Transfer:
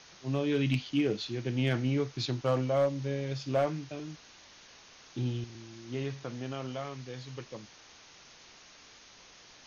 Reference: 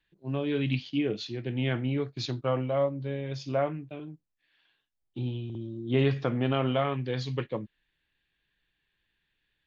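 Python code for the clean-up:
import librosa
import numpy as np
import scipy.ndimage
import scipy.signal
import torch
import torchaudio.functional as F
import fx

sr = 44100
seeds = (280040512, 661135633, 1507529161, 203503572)

y = fx.fix_declip(x, sr, threshold_db=-20.5)
y = fx.noise_reduce(y, sr, print_start_s=8.97, print_end_s=9.47, reduce_db=23.0)
y = fx.gain(y, sr, db=fx.steps((0.0, 0.0), (5.44, 11.0)))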